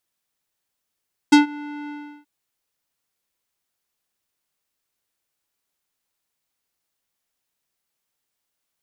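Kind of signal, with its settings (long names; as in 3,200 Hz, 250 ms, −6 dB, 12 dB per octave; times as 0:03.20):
subtractive voice square D4 12 dB per octave, low-pass 2,200 Hz, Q 1.1, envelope 2 octaves, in 0.09 s, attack 10 ms, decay 0.13 s, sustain −24 dB, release 0.36 s, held 0.57 s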